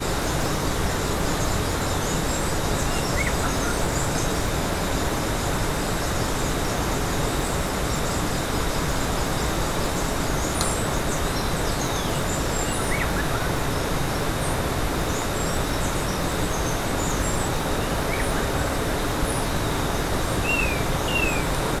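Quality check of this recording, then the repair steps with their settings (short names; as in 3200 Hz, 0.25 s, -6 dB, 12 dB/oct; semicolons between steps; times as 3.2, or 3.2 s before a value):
crackle 47/s -29 dBFS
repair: de-click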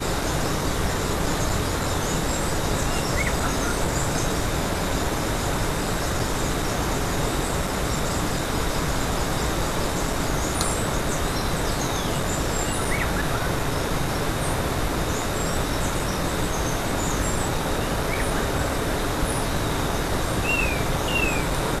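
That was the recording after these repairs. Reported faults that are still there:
none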